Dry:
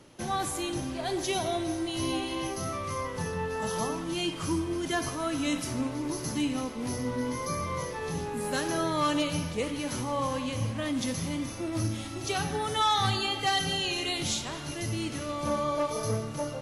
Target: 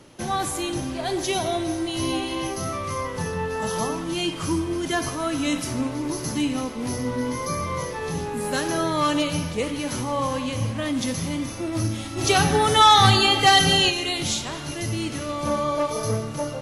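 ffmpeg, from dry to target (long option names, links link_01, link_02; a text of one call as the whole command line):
ffmpeg -i in.wav -filter_complex "[0:a]asplit=3[link_01][link_02][link_03];[link_01]afade=type=out:start_time=12.17:duration=0.02[link_04];[link_02]acontrast=70,afade=type=in:start_time=12.17:duration=0.02,afade=type=out:start_time=13.89:duration=0.02[link_05];[link_03]afade=type=in:start_time=13.89:duration=0.02[link_06];[link_04][link_05][link_06]amix=inputs=3:normalize=0,volume=5dB" out.wav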